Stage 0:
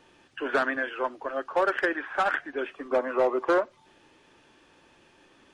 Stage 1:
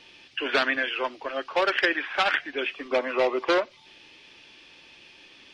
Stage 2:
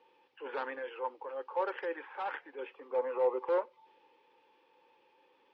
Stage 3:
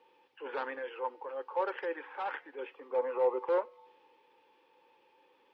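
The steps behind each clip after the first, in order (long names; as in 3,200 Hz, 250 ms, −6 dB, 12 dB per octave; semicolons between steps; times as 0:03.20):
flat-topped bell 3,400 Hz +13.5 dB
pair of resonant band-passes 660 Hz, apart 0.79 octaves; transient designer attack −6 dB, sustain +1 dB
tuned comb filter 99 Hz, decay 1.2 s, harmonics odd, mix 40%; level +5 dB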